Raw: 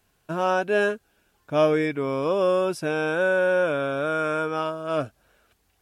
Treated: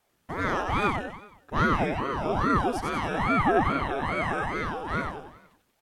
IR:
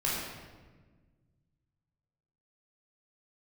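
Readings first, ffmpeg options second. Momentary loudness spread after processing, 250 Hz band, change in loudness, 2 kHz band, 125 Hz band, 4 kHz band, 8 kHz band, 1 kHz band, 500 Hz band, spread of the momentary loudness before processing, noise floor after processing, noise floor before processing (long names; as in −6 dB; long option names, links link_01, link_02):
10 LU, 0.0 dB, −3.0 dB, −2.5 dB, +3.5 dB, −1.5 dB, can't be measured, +2.5 dB, −9.0 dB, 7 LU, −72 dBFS, −68 dBFS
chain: -af "aecho=1:1:93|186|279|372|465|558:0.596|0.298|0.149|0.0745|0.0372|0.0186,aeval=exprs='val(0)*sin(2*PI*480*n/s+480*0.75/2.4*sin(2*PI*2.4*n/s))':channel_layout=same,volume=-2dB"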